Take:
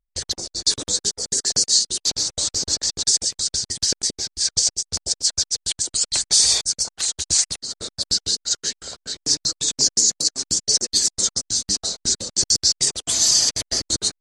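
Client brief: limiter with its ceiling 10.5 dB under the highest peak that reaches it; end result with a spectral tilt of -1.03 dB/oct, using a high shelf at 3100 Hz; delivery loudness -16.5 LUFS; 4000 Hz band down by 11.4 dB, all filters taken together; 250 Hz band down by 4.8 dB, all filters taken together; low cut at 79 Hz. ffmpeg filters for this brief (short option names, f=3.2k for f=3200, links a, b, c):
-af "highpass=79,equalizer=f=250:t=o:g=-6.5,highshelf=f=3.1k:g=-8,equalizer=f=4k:t=o:g=-7.5,volume=17.5dB,alimiter=limit=-6.5dB:level=0:latency=1"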